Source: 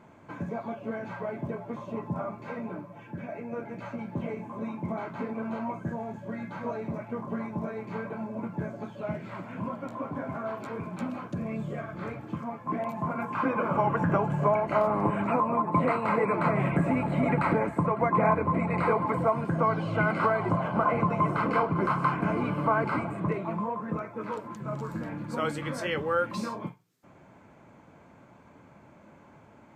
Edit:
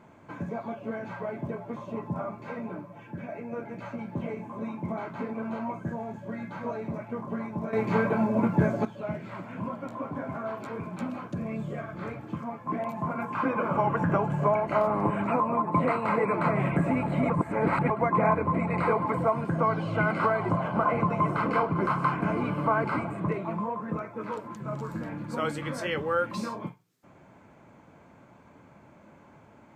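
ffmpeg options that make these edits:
ffmpeg -i in.wav -filter_complex "[0:a]asplit=5[link_01][link_02][link_03][link_04][link_05];[link_01]atrim=end=7.732[link_06];[link_02]atrim=start=7.728:end=8.852,asetpts=PTS-STARTPTS,volume=10.5dB[link_07];[link_03]atrim=start=8.848:end=17.302[link_08];[link_04]atrim=start=17.298:end=17.902,asetpts=PTS-STARTPTS,areverse[link_09];[link_05]atrim=start=17.898[link_10];[link_06][link_07]acrossfade=duration=0.004:curve1=hsin:curve2=hsin[link_11];[link_11][link_08]acrossfade=duration=0.004:curve1=hsin:curve2=hsin[link_12];[link_12][link_09]acrossfade=duration=0.004:curve1=hsin:curve2=hsin[link_13];[link_13][link_10]acrossfade=duration=0.004:curve1=hsin:curve2=hsin" out.wav

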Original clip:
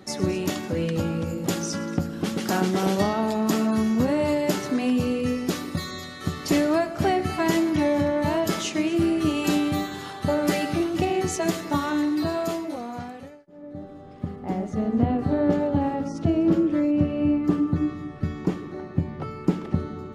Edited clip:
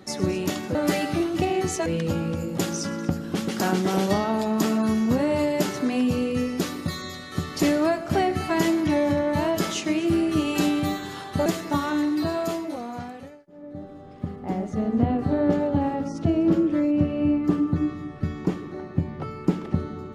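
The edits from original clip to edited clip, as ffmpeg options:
ffmpeg -i in.wav -filter_complex "[0:a]asplit=4[link_01][link_02][link_03][link_04];[link_01]atrim=end=0.752[link_05];[link_02]atrim=start=10.348:end=11.462[link_06];[link_03]atrim=start=0.748:end=10.352[link_07];[link_04]atrim=start=11.458[link_08];[link_05][link_06]acrossfade=duration=0.004:curve1=hsin:curve2=hsin[link_09];[link_09][link_07]acrossfade=duration=0.004:curve1=hsin:curve2=hsin[link_10];[link_10][link_08]acrossfade=duration=0.004:curve1=hsin:curve2=hsin" out.wav

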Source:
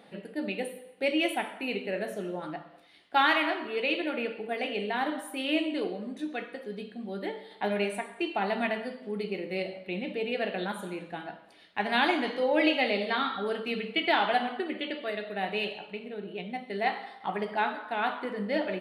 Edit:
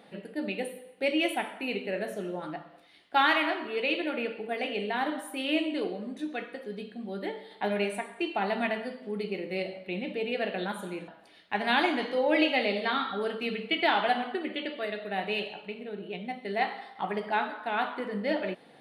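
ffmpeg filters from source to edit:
ffmpeg -i in.wav -filter_complex "[0:a]asplit=2[link_01][link_02];[link_01]atrim=end=11.082[link_03];[link_02]atrim=start=11.328[link_04];[link_03][link_04]acrossfade=duration=0.004:curve1=hsin:curve2=hsin" out.wav

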